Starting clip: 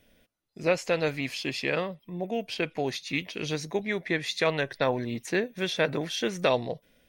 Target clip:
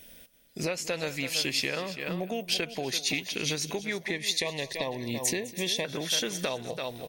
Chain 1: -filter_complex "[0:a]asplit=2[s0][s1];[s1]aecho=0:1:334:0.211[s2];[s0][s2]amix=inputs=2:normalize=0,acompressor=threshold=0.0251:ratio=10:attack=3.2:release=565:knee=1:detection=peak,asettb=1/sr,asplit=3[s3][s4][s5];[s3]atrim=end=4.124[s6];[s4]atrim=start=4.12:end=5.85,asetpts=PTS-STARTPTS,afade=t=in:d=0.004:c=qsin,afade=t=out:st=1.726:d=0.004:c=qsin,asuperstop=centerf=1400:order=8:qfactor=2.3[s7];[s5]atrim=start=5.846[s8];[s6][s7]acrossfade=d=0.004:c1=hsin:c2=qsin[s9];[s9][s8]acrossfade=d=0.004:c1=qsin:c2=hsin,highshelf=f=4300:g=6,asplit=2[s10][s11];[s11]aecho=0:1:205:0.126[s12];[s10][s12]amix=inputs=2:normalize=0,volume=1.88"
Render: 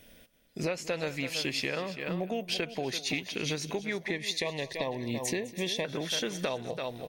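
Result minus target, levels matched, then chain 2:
8 kHz band -4.0 dB
-filter_complex "[0:a]asplit=2[s0][s1];[s1]aecho=0:1:334:0.211[s2];[s0][s2]amix=inputs=2:normalize=0,acompressor=threshold=0.0251:ratio=10:attack=3.2:release=565:knee=1:detection=peak,asettb=1/sr,asplit=3[s3][s4][s5];[s3]atrim=end=4.124[s6];[s4]atrim=start=4.12:end=5.85,asetpts=PTS-STARTPTS,afade=t=in:d=0.004:c=qsin,afade=t=out:st=1.726:d=0.004:c=qsin,asuperstop=centerf=1400:order=8:qfactor=2.3[s7];[s5]atrim=start=5.846[s8];[s6][s7]acrossfade=d=0.004:c1=hsin:c2=qsin[s9];[s9][s8]acrossfade=d=0.004:c1=qsin:c2=hsin,highshelf=f=4300:g=15.5,asplit=2[s10][s11];[s11]aecho=0:1:205:0.126[s12];[s10][s12]amix=inputs=2:normalize=0,volume=1.88"

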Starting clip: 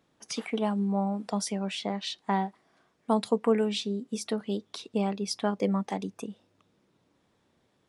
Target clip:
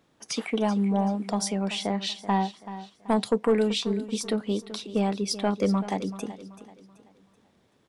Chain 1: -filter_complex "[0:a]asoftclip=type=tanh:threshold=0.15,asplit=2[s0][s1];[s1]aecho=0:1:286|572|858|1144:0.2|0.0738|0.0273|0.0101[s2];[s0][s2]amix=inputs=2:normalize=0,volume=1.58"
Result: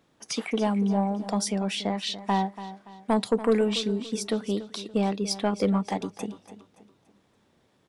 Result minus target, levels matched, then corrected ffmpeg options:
echo 96 ms early
-filter_complex "[0:a]asoftclip=type=tanh:threshold=0.15,asplit=2[s0][s1];[s1]aecho=0:1:382|764|1146|1528:0.2|0.0738|0.0273|0.0101[s2];[s0][s2]amix=inputs=2:normalize=0,volume=1.58"

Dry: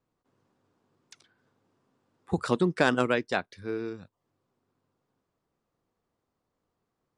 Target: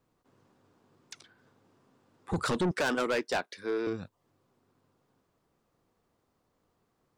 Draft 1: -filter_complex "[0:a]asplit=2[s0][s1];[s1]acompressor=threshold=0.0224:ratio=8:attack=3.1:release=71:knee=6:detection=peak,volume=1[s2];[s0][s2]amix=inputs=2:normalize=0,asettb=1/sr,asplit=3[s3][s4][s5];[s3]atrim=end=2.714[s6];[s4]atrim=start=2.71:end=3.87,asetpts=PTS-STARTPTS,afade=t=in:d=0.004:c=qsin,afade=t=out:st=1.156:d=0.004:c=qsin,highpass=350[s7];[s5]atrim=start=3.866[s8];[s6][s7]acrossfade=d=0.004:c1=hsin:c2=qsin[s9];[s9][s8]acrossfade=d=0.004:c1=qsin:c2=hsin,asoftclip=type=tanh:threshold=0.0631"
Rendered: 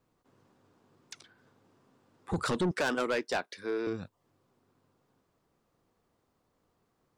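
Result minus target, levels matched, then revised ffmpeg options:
compression: peak gain reduction +10 dB
-filter_complex "[0:a]asplit=2[s0][s1];[s1]acompressor=threshold=0.0841:ratio=8:attack=3.1:release=71:knee=6:detection=peak,volume=1[s2];[s0][s2]amix=inputs=2:normalize=0,asettb=1/sr,asplit=3[s3][s4][s5];[s3]atrim=end=2.714[s6];[s4]atrim=start=2.71:end=3.87,asetpts=PTS-STARTPTS,afade=t=in:d=0.004:c=qsin,afade=t=out:st=1.156:d=0.004:c=qsin,highpass=350[s7];[s5]atrim=start=3.866[s8];[s6][s7]acrossfade=d=0.004:c1=hsin:c2=qsin[s9];[s9][s8]acrossfade=d=0.004:c1=qsin:c2=hsin,asoftclip=type=tanh:threshold=0.0631"

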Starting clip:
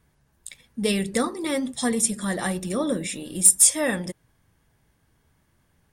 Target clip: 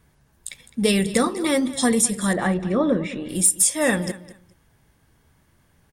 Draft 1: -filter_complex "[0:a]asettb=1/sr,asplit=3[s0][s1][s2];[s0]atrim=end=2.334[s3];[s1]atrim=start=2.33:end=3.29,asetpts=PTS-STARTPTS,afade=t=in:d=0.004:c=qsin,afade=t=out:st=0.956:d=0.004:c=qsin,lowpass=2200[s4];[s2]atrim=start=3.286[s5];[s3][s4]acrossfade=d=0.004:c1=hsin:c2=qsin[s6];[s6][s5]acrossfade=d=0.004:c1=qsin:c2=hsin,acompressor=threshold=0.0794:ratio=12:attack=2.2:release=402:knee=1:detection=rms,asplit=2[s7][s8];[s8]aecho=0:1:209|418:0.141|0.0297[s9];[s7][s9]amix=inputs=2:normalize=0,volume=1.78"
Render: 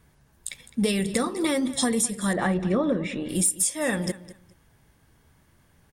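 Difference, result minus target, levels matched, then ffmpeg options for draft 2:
compression: peak gain reduction +6 dB
-filter_complex "[0:a]asettb=1/sr,asplit=3[s0][s1][s2];[s0]atrim=end=2.334[s3];[s1]atrim=start=2.33:end=3.29,asetpts=PTS-STARTPTS,afade=t=in:d=0.004:c=qsin,afade=t=out:st=0.956:d=0.004:c=qsin,lowpass=2200[s4];[s2]atrim=start=3.286[s5];[s3][s4]acrossfade=d=0.004:c1=hsin:c2=qsin[s6];[s6][s5]acrossfade=d=0.004:c1=qsin:c2=hsin,acompressor=threshold=0.168:ratio=12:attack=2.2:release=402:knee=1:detection=rms,asplit=2[s7][s8];[s8]aecho=0:1:209|418:0.141|0.0297[s9];[s7][s9]amix=inputs=2:normalize=0,volume=1.78"

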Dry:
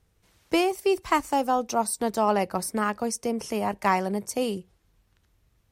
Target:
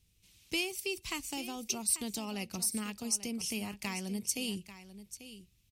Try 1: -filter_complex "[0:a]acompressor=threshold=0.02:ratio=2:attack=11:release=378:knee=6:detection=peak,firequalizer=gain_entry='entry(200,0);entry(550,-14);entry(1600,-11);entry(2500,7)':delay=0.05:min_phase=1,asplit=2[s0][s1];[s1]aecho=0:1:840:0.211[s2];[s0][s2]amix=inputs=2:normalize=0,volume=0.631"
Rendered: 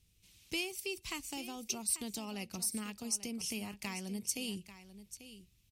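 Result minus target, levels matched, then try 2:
compression: peak gain reduction +3.5 dB
-filter_complex "[0:a]acompressor=threshold=0.0447:ratio=2:attack=11:release=378:knee=6:detection=peak,firequalizer=gain_entry='entry(200,0);entry(550,-14);entry(1600,-11);entry(2500,7)':delay=0.05:min_phase=1,asplit=2[s0][s1];[s1]aecho=0:1:840:0.211[s2];[s0][s2]amix=inputs=2:normalize=0,volume=0.631"

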